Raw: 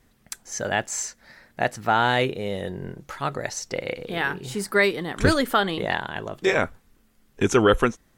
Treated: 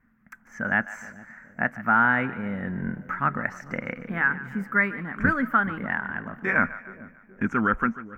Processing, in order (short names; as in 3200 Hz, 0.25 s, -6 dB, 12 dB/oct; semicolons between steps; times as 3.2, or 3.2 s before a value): EQ curve 120 Hz 0 dB, 230 Hz +12 dB, 380 Hz -7 dB, 790 Hz -1 dB, 1500 Hz +12 dB, 2200 Hz +3 dB, 3900 Hz -26 dB, 5900 Hz -18 dB, 10000 Hz -23 dB, 14000 Hz -8 dB; AGC gain up to 10 dB; split-band echo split 570 Hz, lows 0.422 s, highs 0.147 s, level -16 dB; gain -8.5 dB